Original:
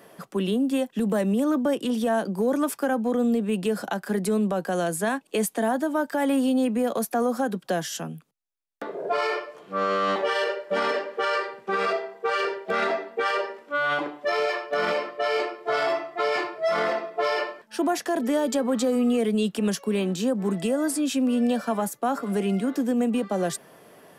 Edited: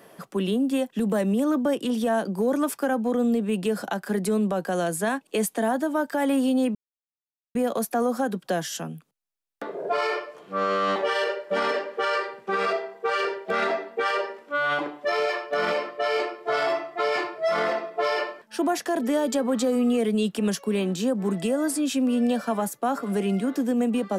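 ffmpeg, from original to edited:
ffmpeg -i in.wav -filter_complex "[0:a]asplit=2[link_01][link_02];[link_01]atrim=end=6.75,asetpts=PTS-STARTPTS,afade=type=out:start_time=6.746:duration=0.004:curve=hsin,apad=pad_dur=0.8[link_03];[link_02]atrim=start=6.75,asetpts=PTS-STARTPTS,afade=type=in:duration=0.004:curve=hsin[link_04];[link_03][link_04]concat=n=2:v=0:a=1" out.wav

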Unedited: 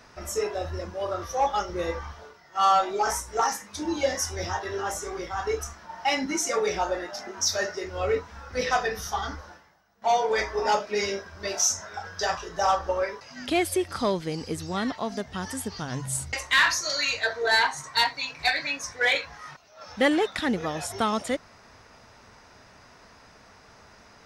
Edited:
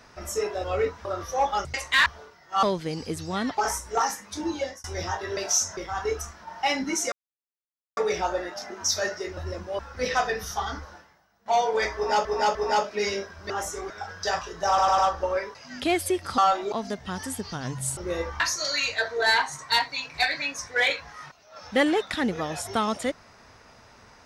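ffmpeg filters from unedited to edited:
ffmpeg -i in.wav -filter_complex "[0:a]asplit=24[link_01][link_02][link_03][link_04][link_05][link_06][link_07][link_08][link_09][link_10][link_11][link_12][link_13][link_14][link_15][link_16][link_17][link_18][link_19][link_20][link_21][link_22][link_23][link_24];[link_01]atrim=end=0.642[link_25];[link_02]atrim=start=7.938:end=8.352[link_26];[link_03]atrim=start=1.058:end=1.662[link_27];[link_04]atrim=start=16.238:end=16.652[link_28];[link_05]atrim=start=2.088:end=2.662[link_29];[link_06]atrim=start=14.038:end=14.992[link_30];[link_07]atrim=start=2.998:end=4.26,asetpts=PTS-STARTPTS,afade=type=out:start_time=0.882:duration=0.38[link_31];[link_08]atrim=start=4.26:end=4.792,asetpts=PTS-STARTPTS,afade=type=in:duration=0.004:curve=hsin[link_32];[link_09]atrim=start=11.458:end=11.862[link_33];[link_10]atrim=start=5.188:end=6.54,asetpts=PTS-STARTPTS,afade=type=out:start_time=1.348:duration=0.004:curve=hsin,apad=pad_dur=0.85[link_34];[link_11]atrim=start=6.54:end=7.942,asetpts=PTS-STARTPTS,afade=type=in:duration=0.004:curve=hsin[link_35];[link_12]atrim=start=0.638:end=1.062[link_36];[link_13]atrim=start=8.348:end=10.812[link_37];[link_14]atrim=start=10.508:end=10.812[link_38];[link_15]atrim=start=10.508:end=11.462[link_39];[link_16]atrim=start=4.788:end=5.192[link_40];[link_17]atrim=start=11.858:end=12.742[link_41];[link_18]atrim=start=12.638:end=12.742[link_42];[link_19]atrim=start=12.638:end=12.742[link_43];[link_20]atrim=start=12.638:end=14.042[link_44];[link_21]atrim=start=2.658:end=3.002[link_45];[link_22]atrim=start=14.988:end=16.242[link_46];[link_23]atrim=start=1.658:end=2.092[link_47];[link_24]atrim=start=16.648[link_48];[link_25][link_26]acrossfade=duration=0.004:curve1=hsin:curve2=hsin[link_49];[link_49][link_27]acrossfade=duration=0.004:curve1=hsin:curve2=hsin[link_50];[link_50][link_28]acrossfade=duration=0.004:curve1=hsin:curve2=hsin[link_51];[link_51][link_29]acrossfade=duration=0.004:curve1=hsin:curve2=hsin[link_52];[link_52][link_30]acrossfade=duration=0.004:curve1=hsin:curve2=hsin[link_53];[link_31][link_32]concat=n=2:v=0:a=1[link_54];[link_53][link_54]acrossfade=duration=0.004:curve1=hsin:curve2=hsin[link_55];[link_55][link_33]acrossfade=duration=0.004:curve1=hsin:curve2=hsin[link_56];[link_34][link_35]concat=n=2:v=0:a=1[link_57];[link_56][link_57]acrossfade=duration=0.004:curve1=hsin:curve2=hsin[link_58];[link_58][link_36]acrossfade=duration=0.004:curve1=hsin:curve2=hsin[link_59];[link_59][link_37]acrossfade=duration=0.004:curve1=hsin:curve2=hsin[link_60];[link_60][link_38]acrossfade=duration=0.004:curve1=hsin:curve2=hsin[link_61];[link_61][link_39]acrossfade=duration=0.004:curve1=hsin:curve2=hsin[link_62];[link_62][link_40]acrossfade=duration=0.004:curve1=hsin:curve2=hsin[link_63];[link_63][link_41]acrossfade=duration=0.004:curve1=hsin:curve2=hsin[link_64];[link_64][link_42]acrossfade=duration=0.004:curve1=hsin:curve2=hsin[link_65];[link_65][link_43]acrossfade=duration=0.004:curve1=hsin:curve2=hsin[link_66];[link_66][link_44]acrossfade=duration=0.004:curve1=hsin:curve2=hsin[link_67];[link_67][link_45]acrossfade=duration=0.004:curve1=hsin:curve2=hsin[link_68];[link_68][link_46]acrossfade=duration=0.004:curve1=hsin:curve2=hsin[link_69];[link_69][link_47]acrossfade=duration=0.004:curve1=hsin:curve2=hsin[link_70];[link_70][link_48]acrossfade=duration=0.004:curve1=hsin:curve2=hsin" out.wav

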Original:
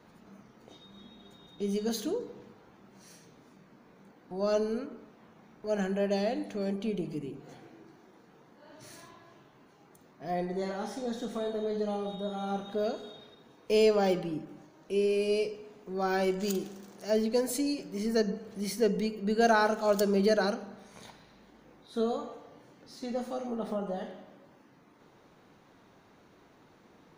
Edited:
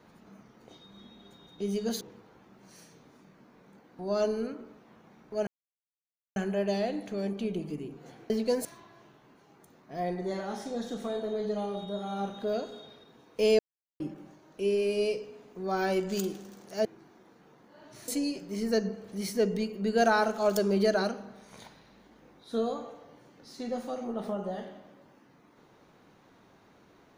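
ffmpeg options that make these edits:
ffmpeg -i in.wav -filter_complex "[0:a]asplit=9[link_01][link_02][link_03][link_04][link_05][link_06][link_07][link_08][link_09];[link_01]atrim=end=2.012[link_10];[link_02]atrim=start=2.328:end=5.79,asetpts=PTS-STARTPTS,afade=type=out:start_time=3.458:duration=0.004:curve=hsin,apad=pad_dur=0.89[link_11];[link_03]atrim=start=5.79:end=7.732,asetpts=PTS-STARTPTS,afade=type=in:duration=0.004:curve=hsin[link_12];[link_04]atrim=start=17.158:end=17.512[link_13];[link_05]atrim=start=8.958:end=13.9,asetpts=PTS-STARTPTS,afade=type=out:start_time=4.938:duration=0.004:curve=hsin[link_14];[link_06]atrim=start=13.9:end=14.31,asetpts=PTS-STARTPTS,volume=0[link_15];[link_07]atrim=start=14.31:end=17.162,asetpts=PTS-STARTPTS,afade=type=in:duration=0.004:curve=hsin[link_16];[link_08]atrim=start=7.728:end=8.962[link_17];[link_09]atrim=start=17.508[link_18];[link_11][link_12]concat=n=2:v=0:a=1[link_19];[link_10][link_19]acrossfade=duration=0.004:curve1=hsin:curve2=hsin[link_20];[link_20][link_13]acrossfade=duration=0.004:curve1=hsin:curve2=hsin[link_21];[link_14][link_15][link_16]concat=n=3:v=0:a=1[link_22];[link_21][link_22]acrossfade=duration=0.004:curve1=hsin:curve2=hsin[link_23];[link_23][link_17]acrossfade=duration=0.004:curve1=hsin:curve2=hsin[link_24];[link_24][link_18]acrossfade=duration=0.004:curve1=hsin:curve2=hsin" out.wav

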